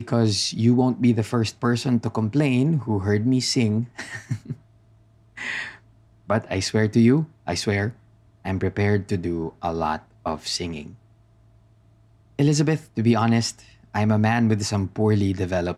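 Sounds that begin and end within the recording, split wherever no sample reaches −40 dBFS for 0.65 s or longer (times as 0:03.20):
0:05.37–0:10.95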